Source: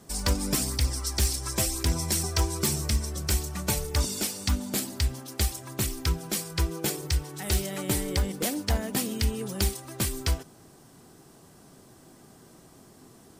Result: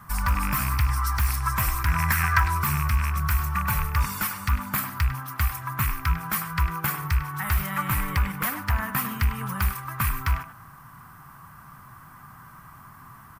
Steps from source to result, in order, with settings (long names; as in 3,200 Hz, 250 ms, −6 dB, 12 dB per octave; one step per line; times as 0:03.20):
loose part that buzzes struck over −29 dBFS, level −25 dBFS
drawn EQ curve 140 Hz 0 dB, 400 Hz −23 dB, 700 Hz −11 dB, 1,100 Hz +11 dB, 2,200 Hz −1 dB, 3,700 Hz −14 dB, 8,000 Hz −16 dB, 14,000 Hz +2 dB
brickwall limiter −22.5 dBFS, peak gain reduction 9 dB
0:01.84–0:02.42: parametric band 1,700 Hz +5.5 dB → +13 dB 0.73 octaves
far-end echo of a speakerphone 100 ms, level −9 dB
level +8.5 dB